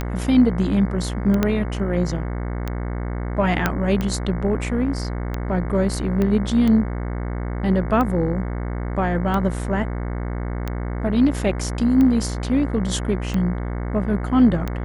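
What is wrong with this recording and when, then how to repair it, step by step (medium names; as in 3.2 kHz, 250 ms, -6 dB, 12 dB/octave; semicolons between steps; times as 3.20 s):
buzz 60 Hz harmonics 37 -26 dBFS
tick 45 rpm -12 dBFS
1.43 s: pop -6 dBFS
3.66 s: pop -4 dBFS
6.22 s: pop -12 dBFS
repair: de-click; de-hum 60 Hz, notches 37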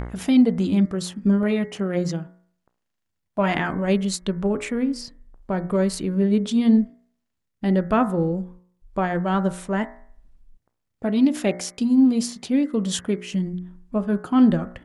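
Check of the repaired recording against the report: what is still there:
1.43 s: pop
3.66 s: pop
6.22 s: pop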